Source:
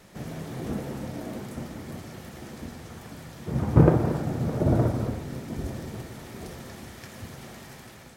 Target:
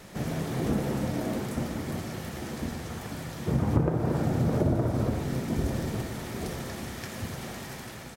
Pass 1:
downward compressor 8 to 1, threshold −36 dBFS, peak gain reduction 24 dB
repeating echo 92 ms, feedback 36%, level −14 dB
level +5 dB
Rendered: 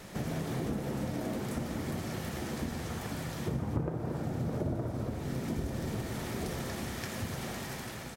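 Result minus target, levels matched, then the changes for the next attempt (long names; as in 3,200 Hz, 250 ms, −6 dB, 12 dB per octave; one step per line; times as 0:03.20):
downward compressor: peak gain reduction +8.5 dB
change: downward compressor 8 to 1, threshold −26.5 dBFS, peak gain reduction 16 dB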